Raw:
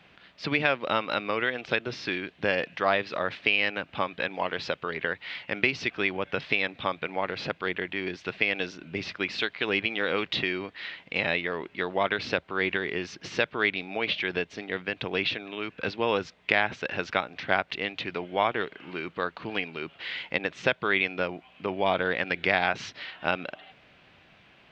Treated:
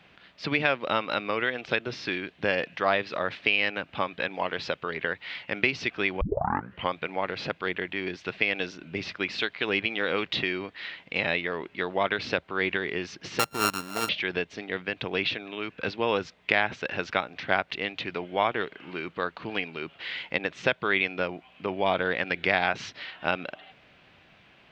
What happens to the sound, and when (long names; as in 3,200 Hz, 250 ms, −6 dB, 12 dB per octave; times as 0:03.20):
0:06.21: tape start 0.71 s
0:13.39–0:14.09: samples sorted by size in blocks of 32 samples